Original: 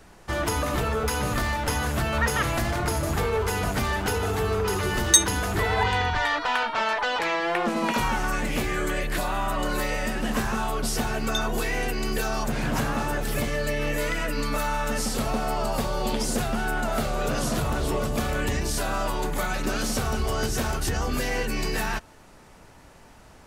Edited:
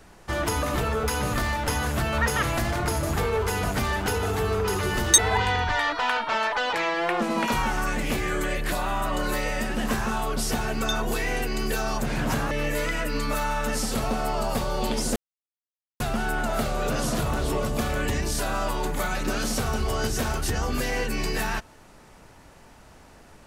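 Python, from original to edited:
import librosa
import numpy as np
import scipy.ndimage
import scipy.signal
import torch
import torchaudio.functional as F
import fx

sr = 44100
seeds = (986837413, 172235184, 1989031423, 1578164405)

y = fx.edit(x, sr, fx.cut(start_s=5.18, length_s=0.46),
    fx.cut(start_s=12.97, length_s=0.77),
    fx.insert_silence(at_s=16.39, length_s=0.84), tone=tone)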